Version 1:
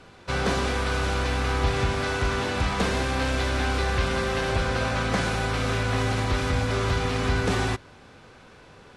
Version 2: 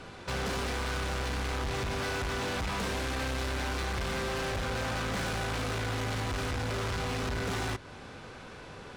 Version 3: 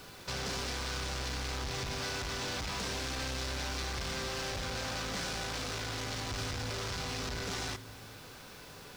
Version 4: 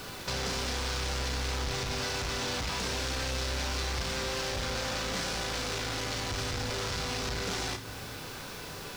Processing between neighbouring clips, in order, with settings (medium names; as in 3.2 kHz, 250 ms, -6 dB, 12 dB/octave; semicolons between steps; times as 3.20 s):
in parallel at +3 dB: compression, threshold -33 dBFS, peak gain reduction 13.5 dB; on the sum: hard clipper -27 dBFS, distortion -6 dB; trim -4 dB
peaking EQ 5.3 kHz +10 dB 1.3 oct; word length cut 8-bit, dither none; reverberation RT60 1.6 s, pre-delay 7 ms, DRR 14.5 dB; trim -6 dB
compression 2:1, threshold -43 dBFS, peak gain reduction 5 dB; on a send: flutter echo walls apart 5.6 m, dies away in 0.22 s; on the sum: trim +8 dB